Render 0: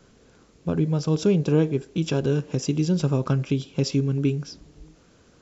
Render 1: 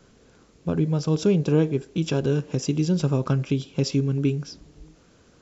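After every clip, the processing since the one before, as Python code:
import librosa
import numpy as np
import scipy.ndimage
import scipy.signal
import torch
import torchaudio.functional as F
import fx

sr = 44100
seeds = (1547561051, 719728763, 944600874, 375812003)

y = x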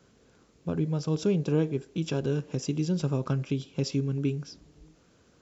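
y = scipy.signal.sosfilt(scipy.signal.butter(2, 45.0, 'highpass', fs=sr, output='sos'), x)
y = y * 10.0 ** (-5.5 / 20.0)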